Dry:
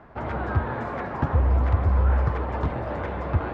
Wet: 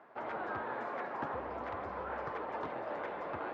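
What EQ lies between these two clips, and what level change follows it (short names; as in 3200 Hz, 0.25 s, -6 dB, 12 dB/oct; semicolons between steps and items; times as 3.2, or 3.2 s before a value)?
HPF 380 Hz 12 dB/oct; air absorption 52 m; -7.0 dB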